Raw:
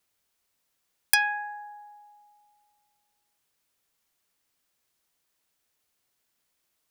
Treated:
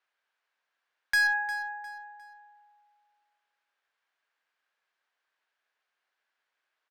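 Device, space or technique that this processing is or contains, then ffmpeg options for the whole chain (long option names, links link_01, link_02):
megaphone: -filter_complex "[0:a]highpass=670,lowpass=2600,equalizer=frequency=1600:width_type=o:width=0.23:gain=8,asoftclip=type=hard:threshold=-23dB,asettb=1/sr,asplit=3[link_01][link_02][link_03];[link_01]atrim=end=1.274[link_04];[link_02]atrim=start=1.27:end=2,asetpts=PTS-STARTPTS,afade=type=in:duration=0.004:curve=qsin,afade=type=out:start_time=0.726:duration=0.004:curve=qsin,aemphasis=mode=reproduction:type=75fm[link_05];[link_03]atrim=start=1.996[link_06];[link_04][link_05]acrossfade=duration=0.004:curve1=hsin:curve2=qsin[link_07];[link_07][link_06]acrossfade=duration=0.004:curve1=qsin:curve2=hsin,aecho=1:1:354|708|1062:0.188|0.0603|0.0193,volume=1.5dB"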